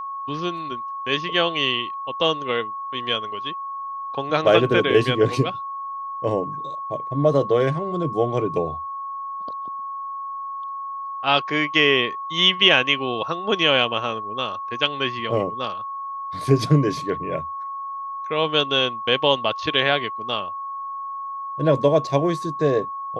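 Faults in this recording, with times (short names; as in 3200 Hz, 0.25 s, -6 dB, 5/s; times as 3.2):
tone 1100 Hz -28 dBFS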